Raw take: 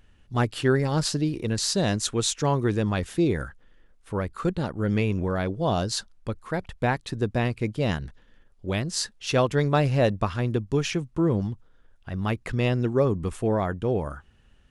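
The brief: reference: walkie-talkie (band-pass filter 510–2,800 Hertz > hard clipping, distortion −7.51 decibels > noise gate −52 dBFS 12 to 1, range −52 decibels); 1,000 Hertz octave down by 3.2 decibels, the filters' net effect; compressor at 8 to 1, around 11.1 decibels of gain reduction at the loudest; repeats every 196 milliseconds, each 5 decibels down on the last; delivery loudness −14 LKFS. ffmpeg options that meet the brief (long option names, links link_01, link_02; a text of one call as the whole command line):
ffmpeg -i in.wav -af "equalizer=frequency=1000:width_type=o:gain=-3.5,acompressor=threshold=-29dB:ratio=8,highpass=510,lowpass=2800,aecho=1:1:196|392|588|784|980|1176|1372:0.562|0.315|0.176|0.0988|0.0553|0.031|0.0173,asoftclip=type=hard:threshold=-39dB,agate=range=-52dB:threshold=-52dB:ratio=12,volume=29.5dB" out.wav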